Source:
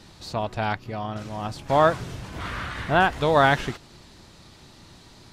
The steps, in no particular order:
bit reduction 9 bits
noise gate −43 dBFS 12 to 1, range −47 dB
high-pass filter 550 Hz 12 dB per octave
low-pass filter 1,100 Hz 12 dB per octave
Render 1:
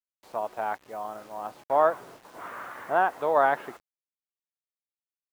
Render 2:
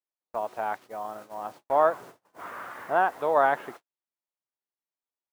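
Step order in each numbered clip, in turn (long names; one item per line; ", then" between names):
high-pass filter, then noise gate, then low-pass filter, then bit reduction
low-pass filter, then bit reduction, then high-pass filter, then noise gate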